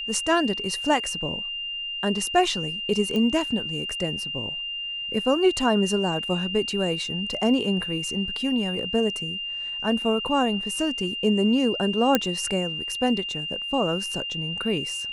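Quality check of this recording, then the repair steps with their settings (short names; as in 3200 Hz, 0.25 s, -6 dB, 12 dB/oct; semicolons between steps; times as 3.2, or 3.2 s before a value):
tone 2800 Hz -29 dBFS
3.16 pop -16 dBFS
12.15 pop -4 dBFS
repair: de-click; notch 2800 Hz, Q 30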